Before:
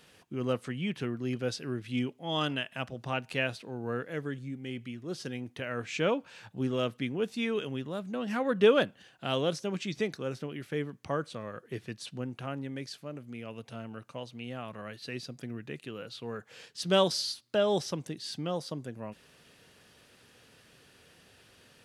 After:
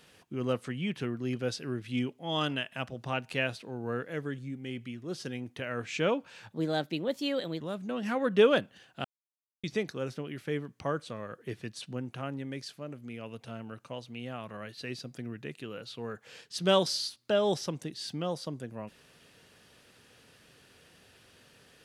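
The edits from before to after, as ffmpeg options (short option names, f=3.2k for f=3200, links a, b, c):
-filter_complex "[0:a]asplit=5[a][b][c][d][e];[a]atrim=end=6.544[f];[b]atrim=start=6.54:end=7.85,asetpts=PTS-STARTPTS,asetrate=54243,aresample=44100,atrim=end_sample=46968,asetpts=PTS-STARTPTS[g];[c]atrim=start=7.846:end=9.29,asetpts=PTS-STARTPTS,afade=t=out:st=1.44:d=0.004:c=hsin[h];[d]atrim=start=9.29:end=9.88,asetpts=PTS-STARTPTS,volume=0[i];[e]atrim=start=9.88,asetpts=PTS-STARTPTS,afade=t=in:d=0.004:c=hsin[j];[f][g]acrossfade=d=0.004:c1=hsin:c2=hsin[k];[h][i][j]concat=n=3:v=0:a=1[l];[k][l]acrossfade=d=0.004:c1=hsin:c2=hsin"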